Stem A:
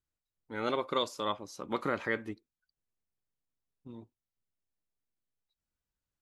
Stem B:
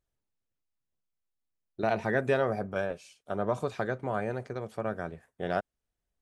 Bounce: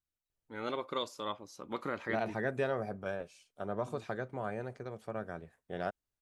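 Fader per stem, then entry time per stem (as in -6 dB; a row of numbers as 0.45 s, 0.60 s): -5.0 dB, -6.5 dB; 0.00 s, 0.30 s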